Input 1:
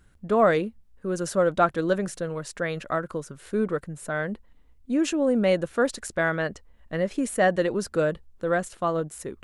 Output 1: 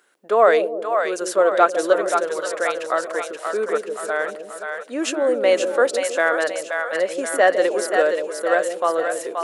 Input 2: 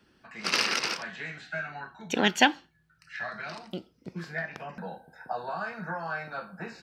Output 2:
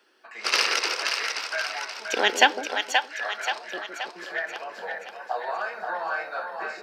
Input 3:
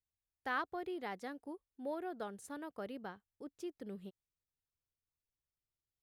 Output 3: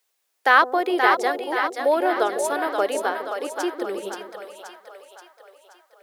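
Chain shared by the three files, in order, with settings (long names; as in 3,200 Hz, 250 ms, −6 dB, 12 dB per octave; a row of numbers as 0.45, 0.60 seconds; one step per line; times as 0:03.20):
high-pass filter 390 Hz 24 dB per octave
on a send: echo with a time of its own for lows and highs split 550 Hz, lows 156 ms, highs 528 ms, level −5 dB
on the sum: normalise the peak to −2 dBFS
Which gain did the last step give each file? +5.5, +3.5, +22.0 decibels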